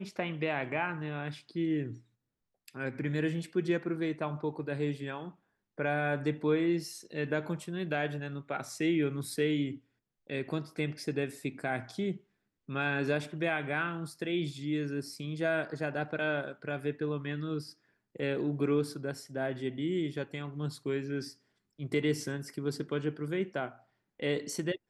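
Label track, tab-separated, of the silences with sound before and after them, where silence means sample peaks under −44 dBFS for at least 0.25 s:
1.980000	2.680000	silence
5.310000	5.780000	silence
9.770000	10.300000	silence
12.170000	12.690000	silence
17.710000	18.150000	silence
21.320000	21.790000	silence
23.720000	24.200000	silence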